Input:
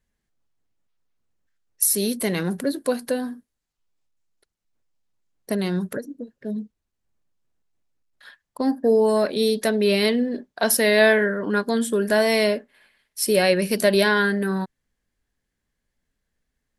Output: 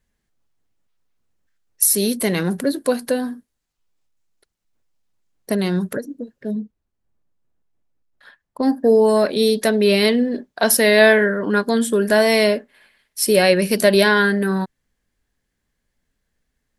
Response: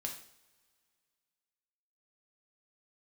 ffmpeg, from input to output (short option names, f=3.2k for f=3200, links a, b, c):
-filter_complex "[0:a]asettb=1/sr,asplit=3[a][b][c];[a]atrim=end=6.554[d];[b]atrim=start=6.55:end=8.63,asetpts=PTS-STARTPTS,afade=t=in:d=0.004:c=qsin,afade=t=out:st=2.076:d=0.004:c=qsin,highshelf=f=2k:g=-10.5[e];[c]atrim=start=8.626[f];[d][e]acrossfade=d=0.004:c1=hsin:c2=qsin[g];[g][f]acrossfade=d=0.004:c1=qsin:c2=hsin,volume=4dB"